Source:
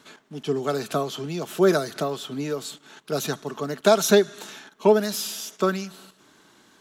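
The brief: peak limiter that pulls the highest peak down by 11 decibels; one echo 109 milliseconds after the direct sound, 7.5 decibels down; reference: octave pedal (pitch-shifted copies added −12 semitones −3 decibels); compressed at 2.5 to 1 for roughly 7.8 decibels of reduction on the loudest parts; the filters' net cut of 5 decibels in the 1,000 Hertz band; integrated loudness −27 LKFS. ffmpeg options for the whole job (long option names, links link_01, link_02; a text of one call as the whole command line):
ffmpeg -i in.wav -filter_complex "[0:a]equalizer=frequency=1000:width_type=o:gain=-7.5,acompressor=threshold=-25dB:ratio=2.5,alimiter=limit=-22dB:level=0:latency=1,aecho=1:1:109:0.422,asplit=2[link_01][link_02];[link_02]asetrate=22050,aresample=44100,atempo=2,volume=-3dB[link_03];[link_01][link_03]amix=inputs=2:normalize=0,volume=3.5dB" out.wav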